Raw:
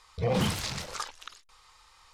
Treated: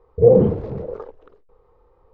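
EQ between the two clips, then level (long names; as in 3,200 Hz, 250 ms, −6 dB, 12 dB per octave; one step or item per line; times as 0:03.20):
low-pass with resonance 450 Hz, resonance Q 4.9
+8.5 dB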